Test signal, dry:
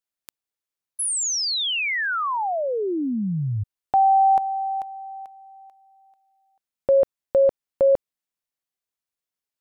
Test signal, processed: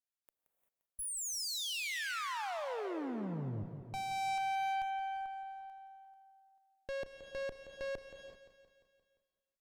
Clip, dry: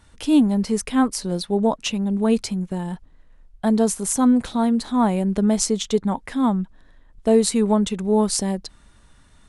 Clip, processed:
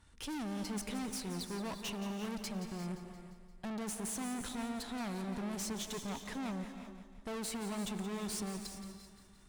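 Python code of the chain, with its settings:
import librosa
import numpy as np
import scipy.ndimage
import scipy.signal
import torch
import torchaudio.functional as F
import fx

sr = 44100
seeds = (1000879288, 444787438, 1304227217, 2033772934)

p1 = fx.peak_eq(x, sr, hz=570.0, db=-4.0, octaves=0.52)
p2 = fx.tube_stage(p1, sr, drive_db=33.0, bias=0.75)
p3 = p2 + fx.echo_feedback(p2, sr, ms=174, feedback_pct=59, wet_db=-12, dry=0)
p4 = fx.rev_gated(p3, sr, seeds[0], gate_ms=410, shape='rising', drr_db=8.0)
y = F.gain(torch.from_numpy(p4), -5.5).numpy()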